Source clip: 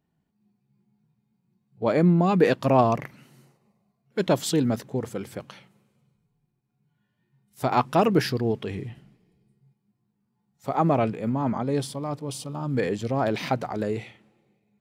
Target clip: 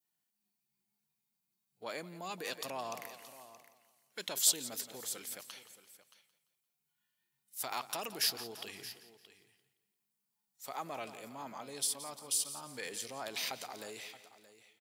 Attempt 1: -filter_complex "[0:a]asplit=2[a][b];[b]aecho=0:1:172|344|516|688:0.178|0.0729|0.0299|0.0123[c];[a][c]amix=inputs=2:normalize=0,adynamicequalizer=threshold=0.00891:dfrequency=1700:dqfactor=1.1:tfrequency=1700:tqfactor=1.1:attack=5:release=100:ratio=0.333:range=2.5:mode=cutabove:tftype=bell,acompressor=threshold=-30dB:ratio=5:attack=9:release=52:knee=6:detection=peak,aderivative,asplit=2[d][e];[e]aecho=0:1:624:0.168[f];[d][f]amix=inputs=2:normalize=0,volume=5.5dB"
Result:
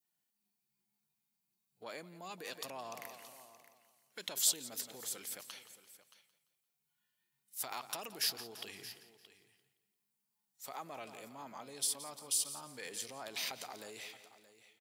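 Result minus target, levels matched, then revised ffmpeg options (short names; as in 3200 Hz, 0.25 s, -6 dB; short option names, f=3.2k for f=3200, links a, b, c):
compressor: peak gain reduction +5 dB
-filter_complex "[0:a]asplit=2[a][b];[b]aecho=0:1:172|344|516|688:0.178|0.0729|0.0299|0.0123[c];[a][c]amix=inputs=2:normalize=0,adynamicequalizer=threshold=0.00891:dfrequency=1700:dqfactor=1.1:tfrequency=1700:tqfactor=1.1:attack=5:release=100:ratio=0.333:range=2.5:mode=cutabove:tftype=bell,acompressor=threshold=-23.5dB:ratio=5:attack=9:release=52:knee=6:detection=peak,aderivative,asplit=2[d][e];[e]aecho=0:1:624:0.168[f];[d][f]amix=inputs=2:normalize=0,volume=5.5dB"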